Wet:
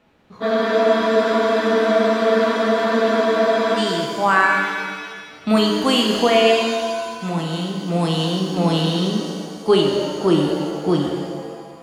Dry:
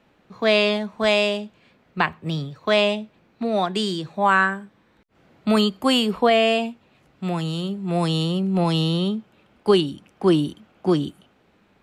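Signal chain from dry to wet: spectral freeze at 0.43, 3.35 s; shimmer reverb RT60 1.8 s, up +7 st, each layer -8 dB, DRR 0.5 dB

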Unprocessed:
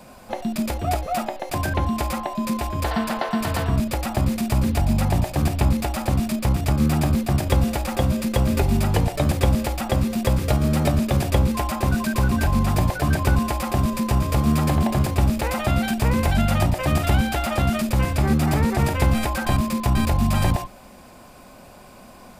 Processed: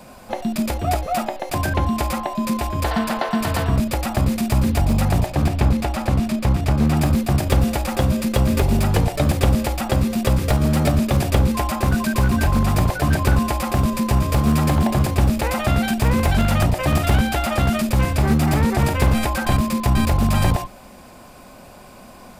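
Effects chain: one-sided fold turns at -14 dBFS; 5.26–6.97 high shelf 6600 Hz -8.5 dB; gain +2.5 dB

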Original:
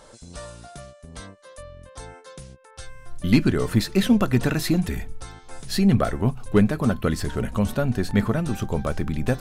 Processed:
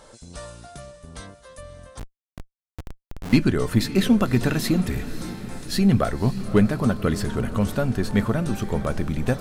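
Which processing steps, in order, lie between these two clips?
diffused feedback echo 0.564 s, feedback 53%, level -13.5 dB; 1.99–3.33 Schmitt trigger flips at -30.5 dBFS

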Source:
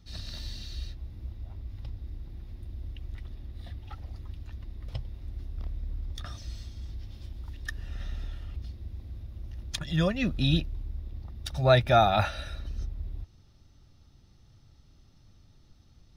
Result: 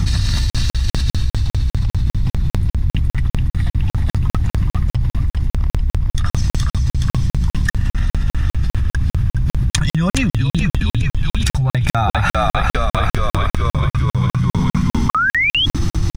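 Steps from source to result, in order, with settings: low shelf 300 Hz +7.5 dB; notch 650 Hz, Q 12; frequency-shifting echo 0.42 s, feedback 53%, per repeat -54 Hz, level -4 dB; painted sound rise, 15.09–15.66, 1100–3400 Hz -35 dBFS; graphic EQ 125/500/1000/2000/4000/8000 Hz +8/-6/+8/+6/-3/+11 dB; crackling interface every 0.20 s, samples 2048, zero, from 0.5; fast leveller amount 100%; gain -7.5 dB

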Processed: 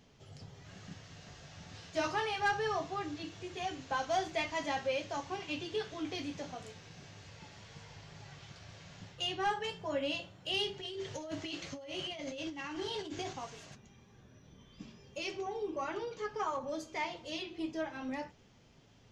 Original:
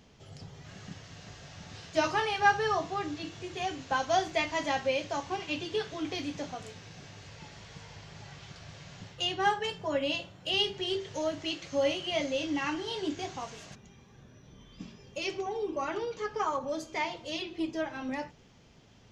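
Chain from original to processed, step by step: 10.8–13.33 negative-ratio compressor -37 dBFS, ratio -1; flange 0.37 Hz, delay 6.8 ms, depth 7.1 ms, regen -61%; soft clip -23.5 dBFS, distortion -19 dB

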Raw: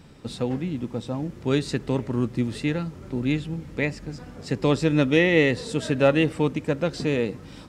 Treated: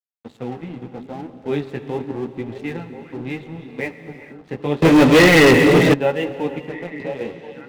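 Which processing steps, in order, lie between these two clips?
thirty-one-band EQ 400 Hz +6 dB, 800 Hz +11 dB, 1250 Hz -6 dB, 2000 Hz +5 dB; 6.58–7.21 compressor 5:1, threshold -24 dBFS, peak gain reduction 7.5 dB; HPF 93 Hz 24 dB/oct; flange 0.79 Hz, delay 8.7 ms, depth 9.6 ms, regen -1%; steep low-pass 3600 Hz; crossover distortion -40.5 dBFS; delay with a stepping band-pass 0.516 s, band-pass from 230 Hz, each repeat 1.4 oct, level -6.5 dB; non-linear reverb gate 0.49 s flat, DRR 11 dB; 4.82–5.94 sample leveller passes 5

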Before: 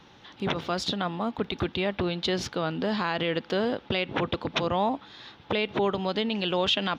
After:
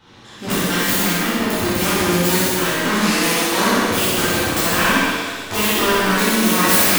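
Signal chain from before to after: self-modulated delay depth 0.9 ms; high shelf 7200 Hz +5 dB; flutter echo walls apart 10.7 m, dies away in 0.89 s; shimmer reverb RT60 1.4 s, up +7 st, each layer -8 dB, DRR -10.5 dB; gain -2.5 dB

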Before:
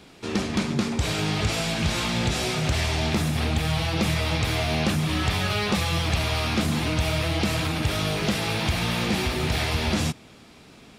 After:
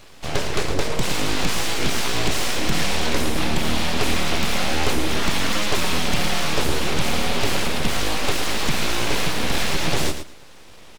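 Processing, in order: full-wave rectifier; feedback echo 0.112 s, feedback 15%, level -9 dB; gain +5 dB

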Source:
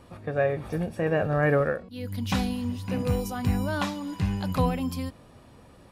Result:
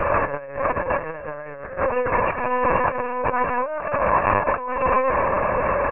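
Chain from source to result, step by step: per-bin compression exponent 0.4; on a send: feedback echo 0.117 s, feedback 22%, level -11.5 dB; on the sum: FFT band-pass 350–2800 Hz; LPC vocoder at 8 kHz pitch kept; in parallel at -1 dB: limiter -15 dBFS, peak gain reduction 8 dB; on the sum: negative-ratio compressor -24 dBFS, ratio -0.5; dynamic EQ 1000 Hz, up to +8 dB, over -41 dBFS, Q 2.2

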